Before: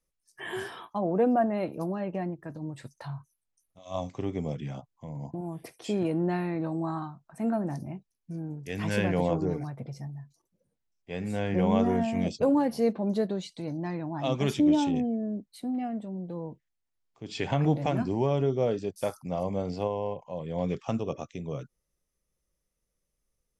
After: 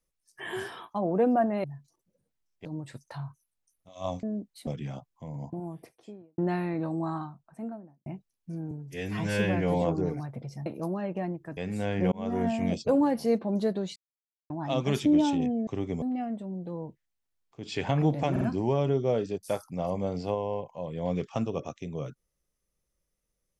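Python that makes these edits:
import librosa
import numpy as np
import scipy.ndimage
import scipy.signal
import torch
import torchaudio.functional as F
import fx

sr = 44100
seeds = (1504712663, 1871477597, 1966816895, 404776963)

y = fx.studio_fade_out(x, sr, start_s=5.22, length_s=0.97)
y = fx.studio_fade_out(y, sr, start_s=6.93, length_s=0.94)
y = fx.edit(y, sr, fx.swap(start_s=1.64, length_s=0.91, other_s=10.1, other_length_s=1.01),
    fx.swap(start_s=4.13, length_s=0.35, other_s=15.21, other_length_s=0.44),
    fx.stretch_span(start_s=8.52, length_s=0.74, factor=1.5),
    fx.fade_in_span(start_s=11.66, length_s=0.36),
    fx.silence(start_s=13.5, length_s=0.54),
    fx.stutter(start_s=17.94, slice_s=0.05, count=3), tone=tone)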